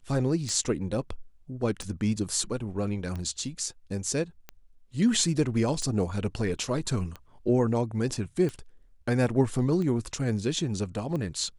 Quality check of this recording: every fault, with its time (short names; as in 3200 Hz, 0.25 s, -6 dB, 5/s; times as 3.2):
tick 45 rpm -23 dBFS